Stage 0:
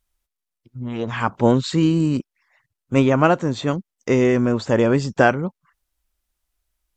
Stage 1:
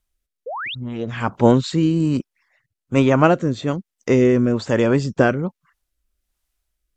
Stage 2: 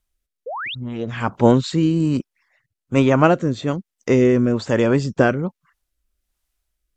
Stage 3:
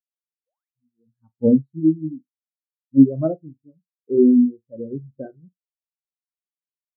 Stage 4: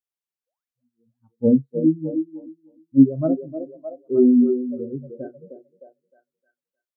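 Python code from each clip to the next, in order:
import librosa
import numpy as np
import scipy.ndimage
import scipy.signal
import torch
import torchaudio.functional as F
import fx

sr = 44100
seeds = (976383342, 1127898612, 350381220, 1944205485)

y1 = fx.spec_paint(x, sr, seeds[0], shape='rise', start_s=0.46, length_s=0.29, low_hz=440.0, high_hz=4000.0, level_db=-30.0)
y1 = fx.rotary(y1, sr, hz=1.2)
y1 = F.gain(torch.from_numpy(y1), 2.5).numpy()
y2 = y1
y3 = fx.room_flutter(y2, sr, wall_m=7.6, rt60_s=0.36)
y3 = fx.spectral_expand(y3, sr, expansion=4.0)
y3 = F.gain(torch.from_numpy(y3), -1.0).numpy()
y4 = fx.echo_stepped(y3, sr, ms=308, hz=420.0, octaves=0.7, feedback_pct=70, wet_db=-5.0)
y4 = F.gain(torch.from_numpy(y4), -1.0).numpy()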